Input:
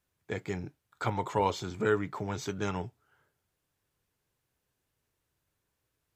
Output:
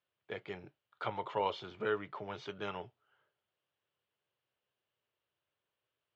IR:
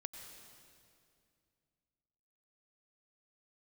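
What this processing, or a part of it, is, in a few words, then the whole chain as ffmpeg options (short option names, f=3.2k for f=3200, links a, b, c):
kitchen radio: -af "highpass=160,equalizer=f=170:t=q:w=4:g=-7,equalizer=f=270:t=q:w=4:g=-9,equalizer=f=590:t=q:w=4:g=5,equalizer=f=1.2k:t=q:w=4:g=3,equalizer=f=3k:t=q:w=4:g=8,lowpass=f=4.2k:w=0.5412,lowpass=f=4.2k:w=1.3066,volume=-6.5dB"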